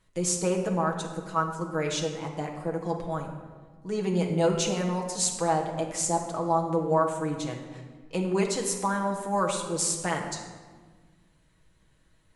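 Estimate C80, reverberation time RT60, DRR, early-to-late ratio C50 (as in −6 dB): 8.0 dB, 1.5 s, −0.5 dB, 5.5 dB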